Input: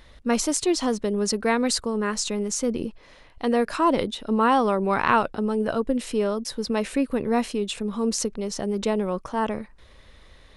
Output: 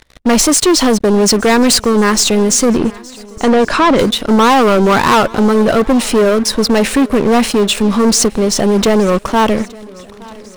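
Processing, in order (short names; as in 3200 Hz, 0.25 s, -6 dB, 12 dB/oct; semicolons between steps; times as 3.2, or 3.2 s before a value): sample leveller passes 5; 2.77–3.99 air absorption 69 m; swung echo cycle 1.448 s, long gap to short 1.5:1, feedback 39%, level -23 dB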